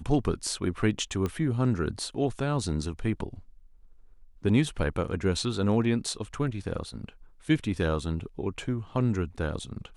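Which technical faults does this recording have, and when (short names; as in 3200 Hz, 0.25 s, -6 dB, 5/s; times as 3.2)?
1.26 pop -18 dBFS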